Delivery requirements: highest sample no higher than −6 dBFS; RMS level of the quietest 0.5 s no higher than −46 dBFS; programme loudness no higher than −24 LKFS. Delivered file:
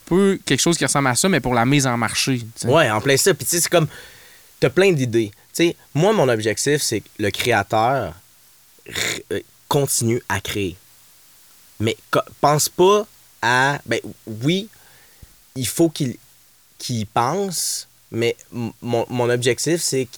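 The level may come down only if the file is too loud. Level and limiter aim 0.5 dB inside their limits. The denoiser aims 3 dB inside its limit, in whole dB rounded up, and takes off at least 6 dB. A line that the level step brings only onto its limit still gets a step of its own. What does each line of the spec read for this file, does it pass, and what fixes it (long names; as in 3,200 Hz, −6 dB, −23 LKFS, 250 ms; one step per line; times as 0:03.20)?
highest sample −3.5 dBFS: out of spec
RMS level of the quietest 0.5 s −53 dBFS: in spec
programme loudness −19.5 LKFS: out of spec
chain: level −5 dB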